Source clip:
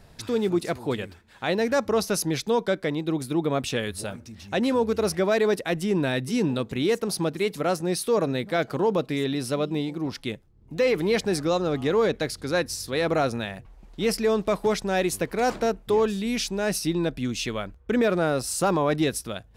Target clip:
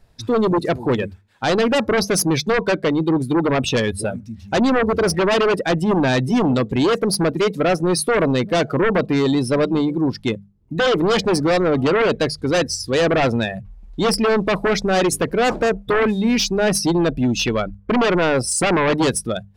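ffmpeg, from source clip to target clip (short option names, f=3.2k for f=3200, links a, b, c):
-af "afftdn=nr=19:nf=-32,aeval=exprs='0.224*sin(PI/2*2.51*val(0)/0.224)':c=same,bandreject=f=50:t=h:w=6,bandreject=f=100:t=h:w=6,bandreject=f=150:t=h:w=6,bandreject=f=200:t=h:w=6"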